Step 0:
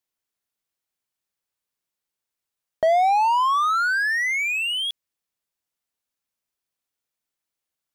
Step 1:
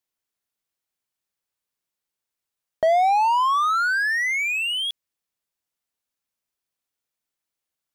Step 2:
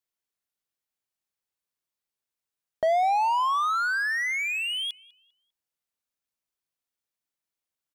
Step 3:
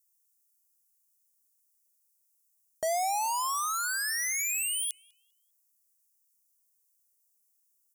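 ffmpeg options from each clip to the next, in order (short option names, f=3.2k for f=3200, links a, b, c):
-af anull
-filter_complex "[0:a]asplit=2[a][b];[b]adelay=199,lowpass=f=2.8k:p=1,volume=-20.5dB,asplit=2[c][d];[d]adelay=199,lowpass=f=2.8k:p=1,volume=0.41,asplit=2[e][f];[f]adelay=199,lowpass=f=2.8k:p=1,volume=0.41[g];[a][c][e][g]amix=inputs=4:normalize=0,volume=-4.5dB"
-af "aeval=exprs='0.15*(cos(1*acos(clip(val(0)/0.15,-1,1)))-cos(1*PI/2))+0.00841*(cos(3*acos(clip(val(0)/0.15,-1,1)))-cos(3*PI/2))':c=same,aexciter=amount=14.8:drive=4.8:freq=5.4k,volume=-6.5dB"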